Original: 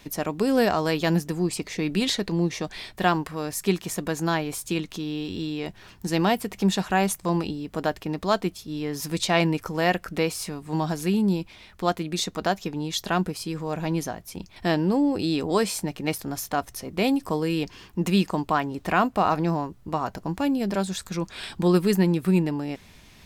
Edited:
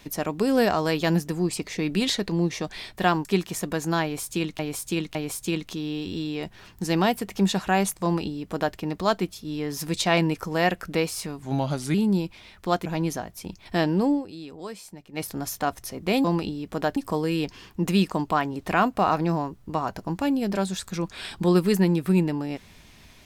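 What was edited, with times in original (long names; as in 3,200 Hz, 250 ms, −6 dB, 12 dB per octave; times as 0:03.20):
0:03.25–0:03.60: remove
0:04.38–0:04.94: repeat, 3 plays
0:07.26–0:07.98: duplicate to 0:17.15
0:10.65–0:11.10: play speed 86%
0:12.01–0:13.76: remove
0:15.02–0:16.17: duck −14.5 dB, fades 0.14 s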